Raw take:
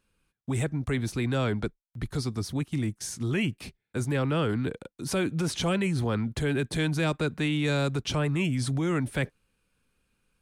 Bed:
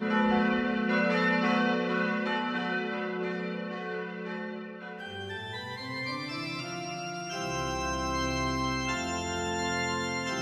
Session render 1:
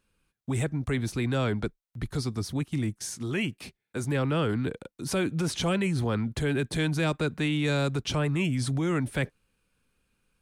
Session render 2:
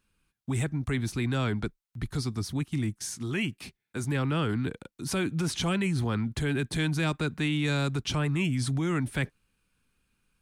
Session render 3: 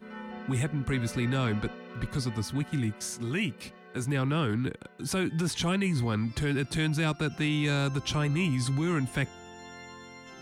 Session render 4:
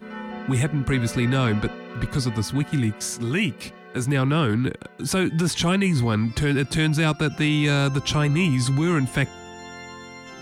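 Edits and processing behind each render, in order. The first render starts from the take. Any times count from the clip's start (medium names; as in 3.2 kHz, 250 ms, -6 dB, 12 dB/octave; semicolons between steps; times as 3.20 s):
3.03–4.04 s: bass shelf 120 Hz -10 dB
peaking EQ 530 Hz -6.5 dB 0.8 oct
add bed -15.5 dB
trim +7 dB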